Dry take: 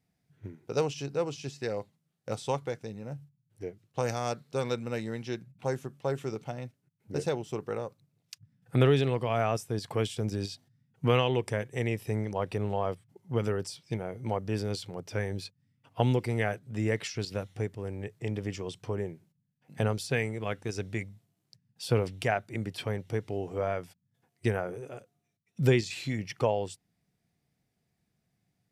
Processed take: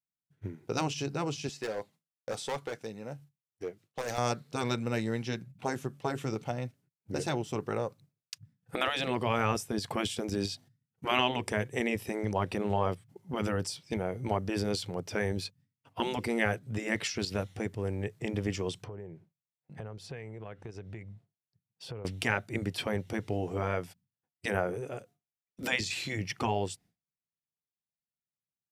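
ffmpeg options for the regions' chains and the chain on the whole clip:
ffmpeg -i in.wav -filter_complex "[0:a]asettb=1/sr,asplit=3[link_01][link_02][link_03];[link_01]atrim=end=1.494[link_04];[link_02]atrim=start=1.49:end=4.18,asetpts=PTS-STARTPTS,afade=type=in:duration=0.004:curve=qsin,afade=type=out:start_time=2.686:duration=0.004:curve=qsin,highpass=frequency=350:poles=1,asoftclip=type=hard:threshold=-32.5dB[link_05];[link_03]atrim=start=4.176[link_06];[link_04][link_05]acrossfade=duration=0.004:curve1=hsin:curve2=qsin[link_07];[link_07][link_06]acrossfade=duration=0.004:curve1=qsin:curve2=hsin,asettb=1/sr,asplit=3[link_08][link_09][link_10];[link_08]atrim=end=18.844[link_11];[link_09]atrim=start=18.84:end=22.05,asetpts=PTS-STARTPTS,afade=type=in:duration=0.004:curve=qsin,afade=type=out:start_time=3.206:duration=0.004:curve=qsin,lowpass=frequency=1400:poles=1,equalizer=frequency=250:width_type=o:width=0.39:gain=-6,acompressor=threshold=-44dB:ratio=4:attack=3.2:release=140:knee=1:detection=peak[link_12];[link_10]atrim=start=22.046[link_13];[link_11][link_12]acrossfade=duration=0.004:curve1=hsin:curve2=qsin[link_14];[link_14][link_13]acrossfade=duration=0.004:curve1=qsin:curve2=hsin,agate=range=-33dB:threshold=-56dB:ratio=3:detection=peak,afftfilt=real='re*lt(hypot(re,im),0.2)':imag='im*lt(hypot(re,im),0.2)':win_size=1024:overlap=0.75,volume=3.5dB" out.wav

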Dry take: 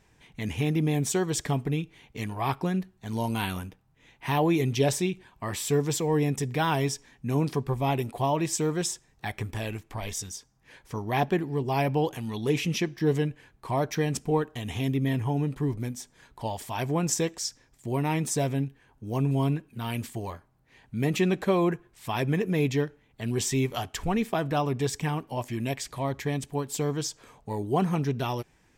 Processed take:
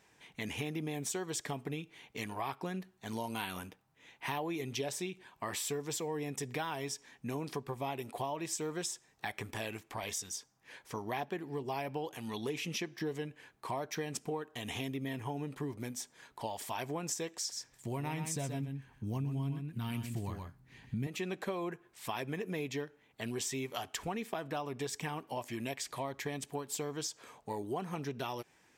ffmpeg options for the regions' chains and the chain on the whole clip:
ffmpeg -i in.wav -filter_complex "[0:a]asettb=1/sr,asplit=3[link_01][link_02][link_03];[link_01]atrim=end=17.364[link_04];[link_02]atrim=start=17.36:end=21.07,asetpts=PTS-STARTPTS,afade=type=in:duration=0.004:curve=qsin,afade=type=out:start_time=3.706:duration=0.004:curve=qsin,asubboost=boost=11:cutoff=190,aecho=1:1:125:0.422,atrim=end_sample=163611[link_05];[link_03]atrim=start=21.066[link_06];[link_04][link_05]acrossfade=duration=0.004:curve1=hsin:curve2=qsin[link_07];[link_07][link_06]acrossfade=duration=0.004:curve1=qsin:curve2=hsin,highpass=frequency=380:poles=1,acompressor=threshold=-35dB:ratio=5" out.wav

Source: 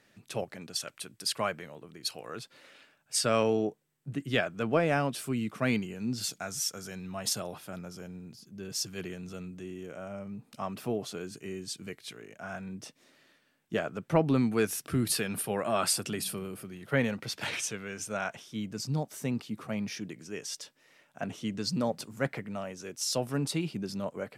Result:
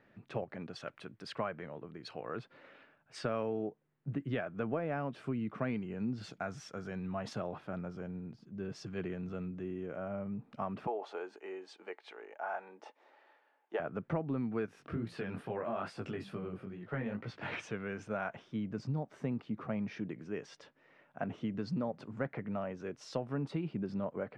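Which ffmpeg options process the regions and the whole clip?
ffmpeg -i in.wav -filter_complex "[0:a]asettb=1/sr,asplit=3[link_01][link_02][link_03];[link_01]atrim=end=10.874[link_04];[link_02]atrim=start=10.87:end=13.8,asetpts=PTS-STARTPTS,afade=type=in:duration=0.004:curve=qsin,afade=type=out:start_time=2.926:duration=0.004:curve=qsin,highpass=frequency=410:width=0.5412,highpass=frequency=410:width=1.3066,equalizer=frequency=850:width_type=o:width=0.24:gain=14.5[link_05];[link_03]atrim=start=13.796[link_06];[link_04][link_05]acrossfade=duration=0.004:curve1=hsin:curve2=qsin[link_07];[link_07][link_06]acrossfade=duration=0.004:curve1=qsin:curve2=hsin,asettb=1/sr,asplit=3[link_08][link_09][link_10];[link_08]atrim=end=14.664[link_11];[link_09]atrim=start=14.66:end=17.52,asetpts=PTS-STARTPTS,afade=type=in:duration=0.004:curve=qsin,afade=type=out:start_time=2.856:duration=0.004:curve=qsin,acompressor=threshold=-31dB:ratio=2:attack=3.2:release=140:knee=1:detection=peak,flanger=delay=17:depth=5.4:speed=2.3[link_12];[link_10]atrim=start=17.516[link_13];[link_11][link_12]acrossfade=duration=0.004:curve1=hsin:curve2=qsin[link_14];[link_14][link_13]acrossfade=duration=0.004:curve1=qsin:curve2=hsin,lowpass=1700,acompressor=threshold=-34dB:ratio=5,volume=1.5dB" out.wav

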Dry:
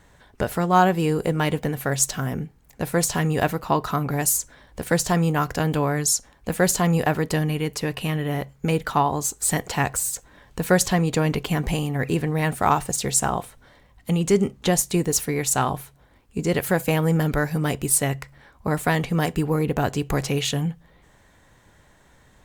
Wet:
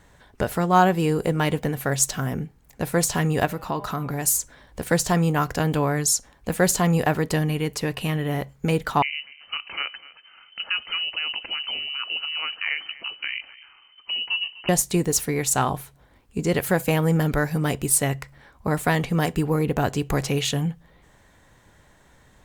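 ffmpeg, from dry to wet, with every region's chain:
ffmpeg -i in.wav -filter_complex "[0:a]asettb=1/sr,asplit=3[link_01][link_02][link_03];[link_01]atrim=end=3.454[link_04];[link_02]atrim=start=3.45:end=4.27,asetpts=PTS-STARTPTS,afade=type=in:duration=0.004:curve=qsin,afade=type=out:start_time=0.816:duration=0.004:curve=qsin,bandreject=frequency=200.9:width_type=h:width=4,bandreject=frequency=401.8:width_type=h:width=4,bandreject=frequency=602.7:width_type=h:width=4,bandreject=frequency=803.6:width_type=h:width=4,bandreject=frequency=1004.5:width_type=h:width=4,bandreject=frequency=1205.4:width_type=h:width=4,bandreject=frequency=1406.3:width_type=h:width=4,bandreject=frequency=1607.2:width_type=h:width=4,bandreject=frequency=1808.1:width_type=h:width=4,bandreject=frequency=2009:width_type=h:width=4,bandreject=frequency=2209.9:width_type=h:width=4,bandreject=frequency=2410.8:width_type=h:width=4,bandreject=frequency=2611.7:width_type=h:width=4,bandreject=frequency=2812.6:width_type=h:width=4,bandreject=frequency=3013.5:width_type=h:width=4,bandreject=frequency=3214.4:width_type=h:width=4,bandreject=frequency=3415.3:width_type=h:width=4,bandreject=frequency=3616.2:width_type=h:width=4,bandreject=frequency=3817.1:width_type=h:width=4,acompressor=threshold=-26dB:ratio=2:attack=3.2:release=140:knee=1:detection=peak[link_05];[link_03]atrim=start=4.266[link_06];[link_04][link_05]acrossfade=duration=0.004:curve1=hsin:curve2=qsin[link_07];[link_07][link_06]acrossfade=duration=0.004:curve1=qsin:curve2=hsin,asettb=1/sr,asplit=3[link_08][link_09][link_10];[link_08]atrim=end=9.024[link_11];[link_09]atrim=start=9.02:end=14.69,asetpts=PTS-STARTPTS,afade=type=in:duration=0.004:curve=qsin,afade=type=out:start_time=5.666:duration=0.004:curve=qsin,acompressor=threshold=-36dB:ratio=1.5:attack=3.2:release=140:knee=1:detection=peak,aecho=1:1:249:0.112,atrim=end_sample=250047,lowpass=frequency=2600:width_type=q:width=0.5098,lowpass=frequency=2600:width_type=q:width=0.6013,lowpass=frequency=2600:width_type=q:width=0.9,lowpass=frequency=2600:width_type=q:width=2.563,afreqshift=-3100[link_12];[link_10]atrim=start=14.686[link_13];[link_11][link_12]acrossfade=duration=0.004:curve1=hsin:curve2=qsin[link_14];[link_14][link_13]acrossfade=duration=0.004:curve1=qsin:curve2=hsin" out.wav

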